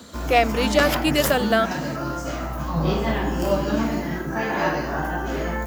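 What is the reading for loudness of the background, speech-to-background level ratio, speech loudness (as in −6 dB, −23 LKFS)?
−25.0 LKFS, 3.5 dB, −21.5 LKFS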